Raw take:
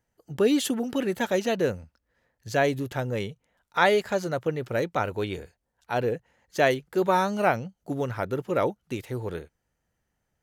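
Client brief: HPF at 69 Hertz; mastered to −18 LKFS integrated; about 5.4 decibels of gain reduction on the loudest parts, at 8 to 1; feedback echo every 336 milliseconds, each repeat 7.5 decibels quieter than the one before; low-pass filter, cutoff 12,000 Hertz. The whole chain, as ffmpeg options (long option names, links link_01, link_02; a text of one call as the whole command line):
ffmpeg -i in.wav -af "highpass=69,lowpass=12000,acompressor=threshold=-22dB:ratio=8,aecho=1:1:336|672|1008|1344|1680:0.422|0.177|0.0744|0.0312|0.0131,volume=11.5dB" out.wav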